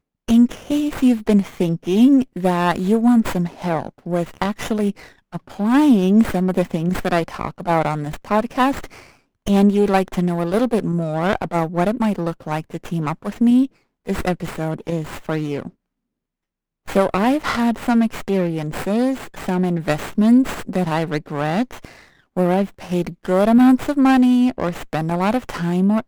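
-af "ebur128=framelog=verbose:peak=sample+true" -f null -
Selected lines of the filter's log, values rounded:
Integrated loudness:
  I:         -19.1 LUFS
  Threshold: -29.4 LUFS
Loudness range:
  LRA:         5.0 LU
  Threshold: -39.8 LUFS
  LRA low:   -22.3 LUFS
  LRA high:  -17.4 LUFS
Sample peak:
  Peak:       -3.5 dBFS
True peak:
  Peak:       -3.5 dBFS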